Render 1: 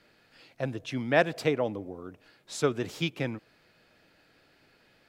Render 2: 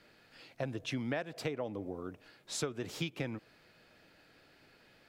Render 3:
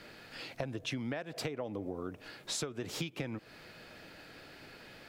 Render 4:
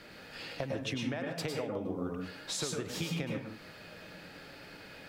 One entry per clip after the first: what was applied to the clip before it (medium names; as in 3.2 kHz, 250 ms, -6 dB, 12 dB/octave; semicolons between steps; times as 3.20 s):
compression 16:1, threshold -32 dBFS, peak gain reduction 17 dB
compression 4:1, threshold -47 dBFS, peak gain reduction 14.5 dB; trim +10.5 dB
reverberation RT60 0.45 s, pre-delay 101 ms, DRR 1 dB